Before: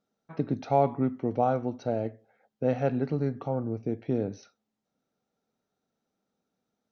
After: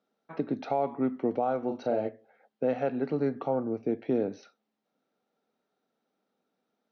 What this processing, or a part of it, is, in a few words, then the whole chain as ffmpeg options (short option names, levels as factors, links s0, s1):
DJ mixer with the lows and highs turned down: -filter_complex "[0:a]asettb=1/sr,asplit=3[s0][s1][s2];[s0]atrim=end=1.594[s3];[s1]atrim=start=1.59:end=2.09,asetpts=PTS-STARTPTS,afade=t=in:d=0.004:c=qsin,afade=t=out:st=0.496:d=0.004:c=qsin,asplit=2[s4][s5];[s5]adelay=38,volume=0.447[s6];[s4][s6]amix=inputs=2:normalize=0,atrim=end_sample=22050[s7];[s2]atrim=start=2.086[s8];[s3][s7]acrossfade=d=0.004:c1=hsin:c2=qsin[s9];[s9][s8]acrossfade=d=0.004:c1=qsin:c2=hsin,acrossover=split=200 5100:gain=0.126 1 0.0631[s10][s11][s12];[s10][s11][s12]amix=inputs=3:normalize=0,alimiter=limit=0.0891:level=0:latency=1:release=359,volume=1.5"